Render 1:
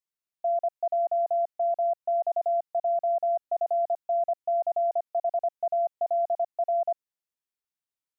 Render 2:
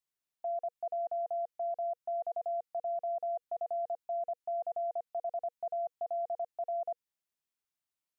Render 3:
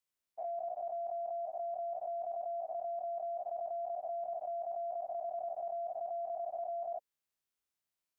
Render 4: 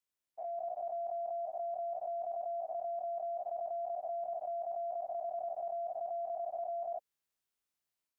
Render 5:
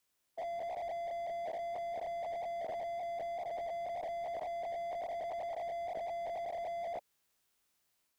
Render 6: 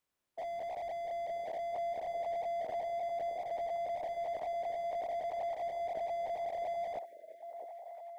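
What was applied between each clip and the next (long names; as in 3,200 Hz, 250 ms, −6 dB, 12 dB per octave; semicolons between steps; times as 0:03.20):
notch filter 480 Hz, Q 12; dynamic equaliser 530 Hz, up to −4 dB, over −40 dBFS, Q 0.73; brickwall limiter −30.5 dBFS, peak gain reduction 6 dB
every bin's largest magnitude spread in time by 120 ms; level −4.5 dB
automatic gain control gain up to 3.5 dB; level −3 dB
slew-rate limiting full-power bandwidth 2.5 Hz; level +10.5 dB
echo through a band-pass that steps 666 ms, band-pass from 440 Hz, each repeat 0.7 octaves, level −5 dB; time-frequency box erased 0:07.05–0:07.43, 680–1,500 Hz; one half of a high-frequency compander decoder only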